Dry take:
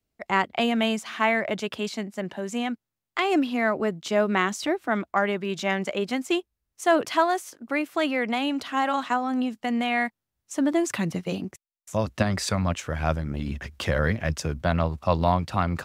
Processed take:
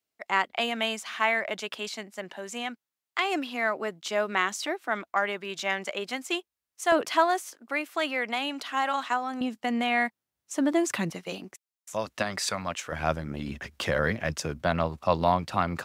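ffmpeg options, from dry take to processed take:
ffmpeg -i in.wav -af "asetnsamples=nb_out_samples=441:pad=0,asendcmd='6.92 highpass f 370;7.53 highpass f 770;9.41 highpass f 220;11.1 highpass f 720;12.92 highpass f 230',highpass=frequency=840:poles=1" out.wav

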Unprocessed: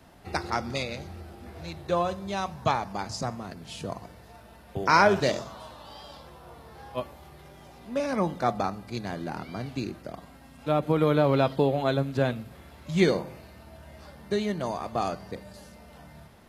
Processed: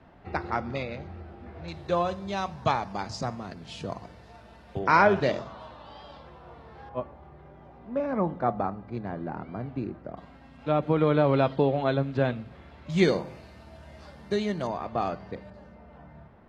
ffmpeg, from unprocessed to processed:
ffmpeg -i in.wav -af "asetnsamples=nb_out_samples=441:pad=0,asendcmd='1.68 lowpass f 5700;4.79 lowpass f 3000;6.89 lowpass f 1400;10.17 lowpass f 3400;12.9 lowpass f 6900;14.67 lowpass f 3000;15.5 lowpass f 1600',lowpass=2300" out.wav

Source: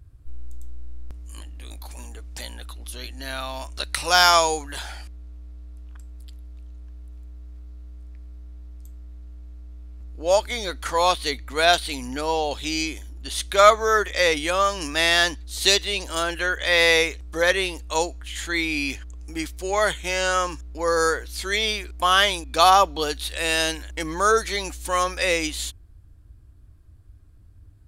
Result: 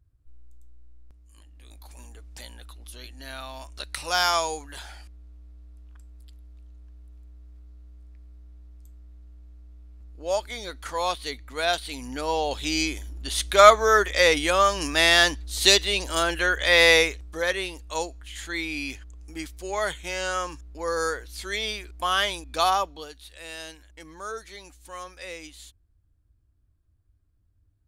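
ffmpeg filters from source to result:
ffmpeg -i in.wav -af "volume=1dB,afade=type=in:start_time=1.34:duration=0.68:silence=0.375837,afade=type=in:start_time=11.79:duration=1.12:silence=0.398107,afade=type=out:start_time=16.93:duration=0.45:silence=0.446684,afade=type=out:start_time=22.6:duration=0.49:silence=0.298538" out.wav

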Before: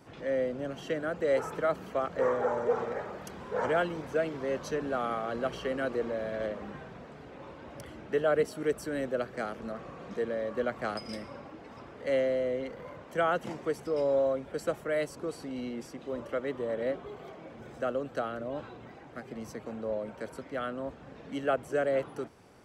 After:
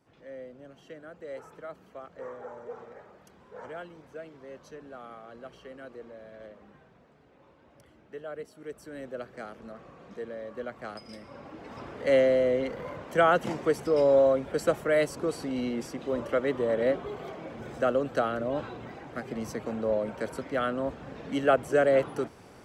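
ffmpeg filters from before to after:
ffmpeg -i in.wav -af "volume=6dB,afade=type=in:start_time=8.57:duration=0.63:silence=0.446684,afade=type=in:start_time=11.21:duration=0.65:silence=0.251189" out.wav

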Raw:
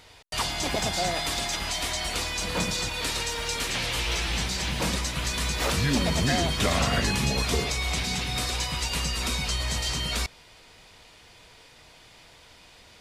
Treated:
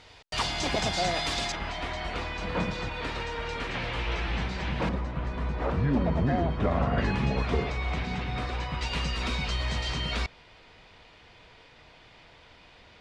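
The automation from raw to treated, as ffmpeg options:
ffmpeg -i in.wav -af "asetnsamples=nb_out_samples=441:pad=0,asendcmd='1.52 lowpass f 2100;4.89 lowpass f 1100;6.98 lowpass f 1900;8.81 lowpass f 3300',lowpass=5500" out.wav

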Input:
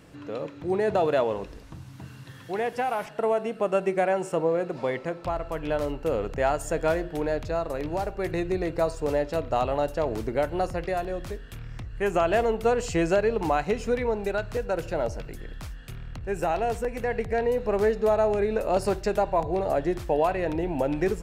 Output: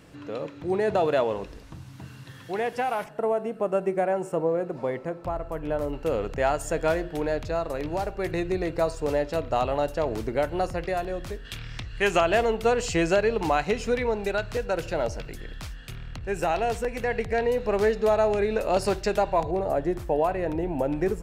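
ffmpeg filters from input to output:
ffmpeg -i in.wav -af "asetnsamples=nb_out_samples=441:pad=0,asendcmd='3.04 equalizer g -9;5.93 equalizer g 2;11.45 equalizer g 14;12.2 equalizer g 5.5;19.51 equalizer g -5.5',equalizer=frequency=3800:width_type=o:width=2.3:gain=1.5" out.wav

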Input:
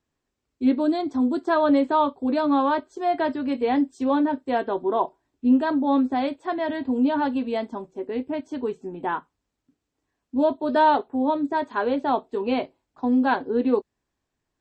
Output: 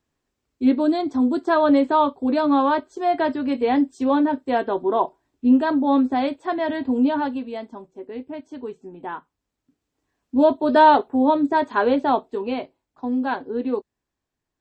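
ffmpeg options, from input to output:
ffmpeg -i in.wav -af "volume=12.5dB,afade=type=out:start_time=7.01:duration=0.47:silence=0.421697,afade=type=in:start_time=9.17:duration=1.32:silence=0.316228,afade=type=out:start_time=11.91:duration=0.66:silence=0.398107" out.wav

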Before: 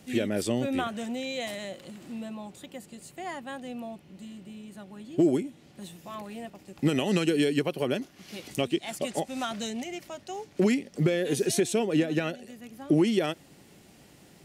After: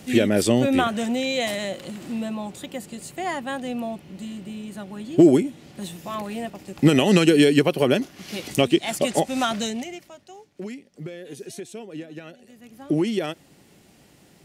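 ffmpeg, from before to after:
ffmpeg -i in.wav -af "volume=20.5dB,afade=type=out:start_time=9.49:duration=0.55:silence=0.237137,afade=type=out:start_time=10.04:duration=0.51:silence=0.421697,afade=type=in:start_time=12.26:duration=0.55:silence=0.266073" out.wav

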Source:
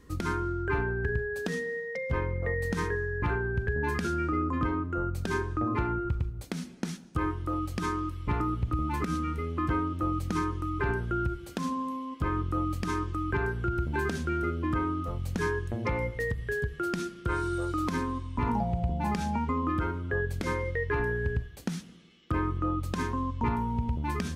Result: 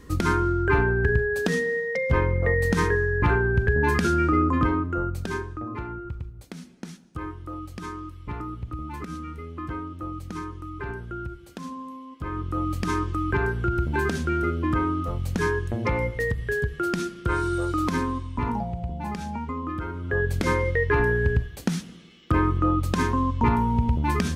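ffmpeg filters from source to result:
ffmpeg -i in.wav -af "volume=27dB,afade=type=out:start_time=4.43:duration=1.17:silence=0.237137,afade=type=in:start_time=12.19:duration=0.67:silence=0.334965,afade=type=out:start_time=18.06:duration=0.69:silence=0.446684,afade=type=in:start_time=19.87:duration=0.48:silence=0.334965" out.wav

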